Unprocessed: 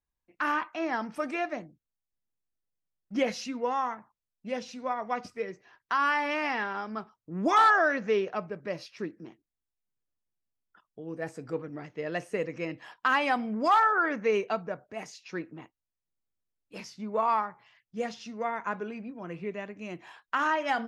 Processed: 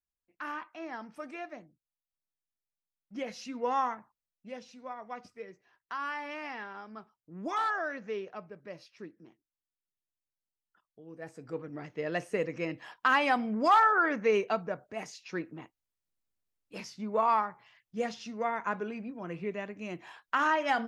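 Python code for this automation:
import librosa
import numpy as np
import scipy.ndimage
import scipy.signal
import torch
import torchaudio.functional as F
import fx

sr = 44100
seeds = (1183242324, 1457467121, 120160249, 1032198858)

y = fx.gain(x, sr, db=fx.line((3.26, -10.0), (3.78, 1.0), (4.58, -10.0), (11.1, -10.0), (11.88, 0.0)))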